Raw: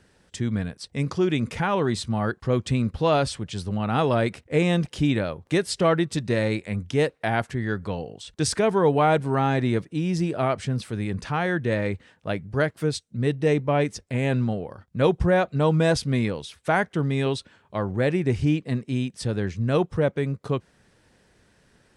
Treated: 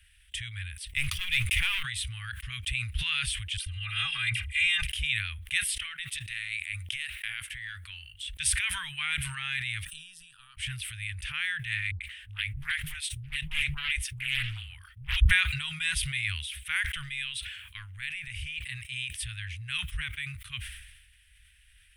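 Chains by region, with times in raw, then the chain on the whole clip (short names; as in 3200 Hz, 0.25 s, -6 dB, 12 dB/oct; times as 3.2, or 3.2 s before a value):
0.91–1.83 bell 1500 Hz -7 dB 0.39 oct + sample leveller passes 2
3.57–4.82 LPF 9700 Hz + comb 2.5 ms, depth 72% + dispersion lows, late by 89 ms, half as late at 1100 Hz
5.66–8.14 low shelf 350 Hz -10.5 dB + compressor 5:1, threshold -28 dBFS
9.85–10.57 HPF 180 Hz 6 dB/oct + compressor 2:1, threshold -40 dBFS + fixed phaser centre 430 Hz, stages 8
11.91–15.31 bell 430 Hz +5 dB 1.7 oct + dispersion highs, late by 96 ms, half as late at 360 Hz + Doppler distortion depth 0.52 ms
16.84–18.58 low shelf 67 Hz -10 dB + compressor, threshold -23 dBFS
whole clip: inverse Chebyshev band-stop 240–610 Hz, stop band 80 dB; band shelf 5500 Hz -16 dB 1.1 oct; sustainer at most 49 dB/s; gain +8 dB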